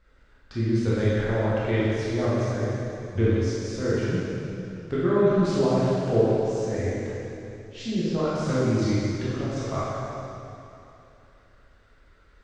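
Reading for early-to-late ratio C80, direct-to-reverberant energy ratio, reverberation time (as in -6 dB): -2.0 dB, -10.0 dB, 2.9 s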